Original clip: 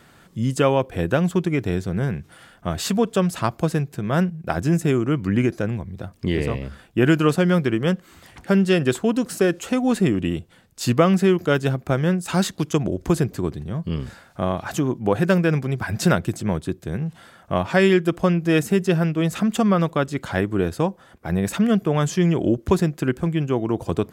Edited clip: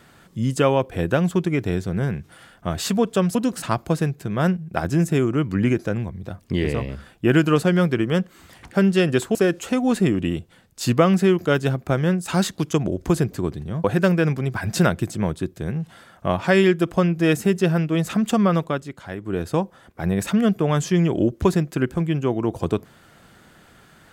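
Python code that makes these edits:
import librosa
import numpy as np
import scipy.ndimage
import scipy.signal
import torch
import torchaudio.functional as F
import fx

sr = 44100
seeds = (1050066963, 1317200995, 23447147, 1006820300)

y = fx.edit(x, sr, fx.move(start_s=9.08, length_s=0.27, to_s=3.35),
    fx.cut(start_s=13.84, length_s=1.26),
    fx.fade_down_up(start_s=19.83, length_s=0.97, db=-10.5, fade_s=0.37), tone=tone)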